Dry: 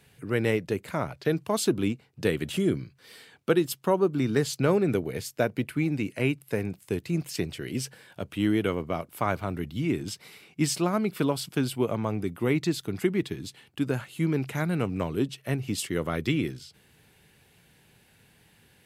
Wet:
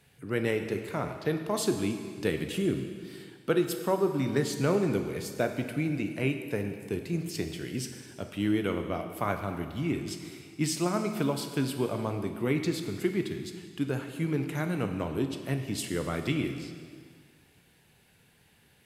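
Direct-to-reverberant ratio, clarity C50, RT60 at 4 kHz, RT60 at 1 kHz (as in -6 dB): 5.5 dB, 7.5 dB, 1.8 s, 1.9 s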